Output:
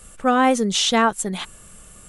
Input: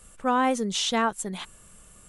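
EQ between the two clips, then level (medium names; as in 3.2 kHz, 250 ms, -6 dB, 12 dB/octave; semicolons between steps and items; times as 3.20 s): band-stop 990 Hz, Q 15; +7.0 dB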